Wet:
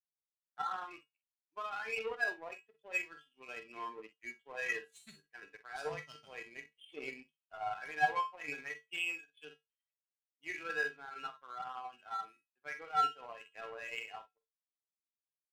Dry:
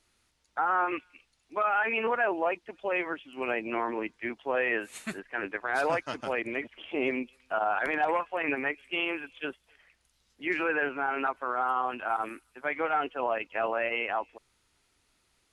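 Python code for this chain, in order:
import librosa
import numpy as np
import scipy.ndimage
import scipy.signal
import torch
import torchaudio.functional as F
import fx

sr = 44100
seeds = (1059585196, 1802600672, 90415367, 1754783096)

y = fx.bin_expand(x, sr, power=1.5)
y = fx.peak_eq(y, sr, hz=3800.0, db=9.0, octaves=2.4)
y = fx.comb_fb(y, sr, f0_hz=150.0, decay_s=0.25, harmonics='odd', damping=0.0, mix_pct=90)
y = fx.room_early_taps(y, sr, ms=(46, 60), db=(-9.0, -13.5))
y = fx.power_curve(y, sr, exponent=1.4)
y = y * 10.0 ** (4.5 / 20.0)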